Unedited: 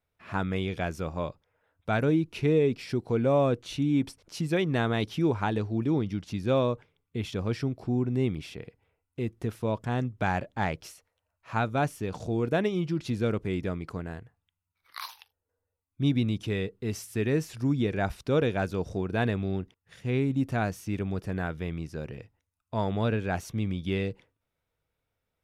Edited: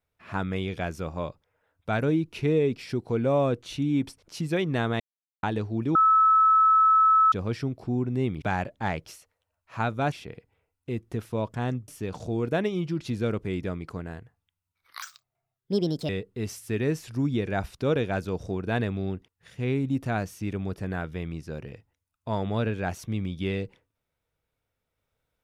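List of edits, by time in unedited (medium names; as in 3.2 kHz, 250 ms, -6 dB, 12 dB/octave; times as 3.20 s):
5.00–5.43 s: mute
5.95–7.32 s: bleep 1.3 kHz -15.5 dBFS
10.18–11.88 s: move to 8.42 s
15.02–16.55 s: speed 143%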